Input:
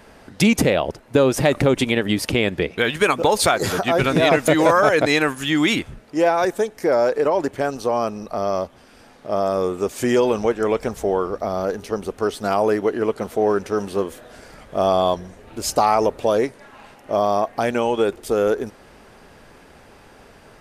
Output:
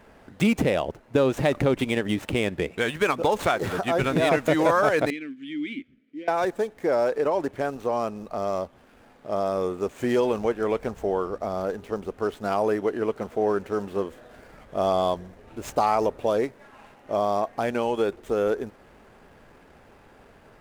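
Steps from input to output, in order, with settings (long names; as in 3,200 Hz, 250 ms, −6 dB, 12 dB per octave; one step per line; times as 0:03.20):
running median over 9 samples
0:05.10–0:06.28: formant filter i
level −5 dB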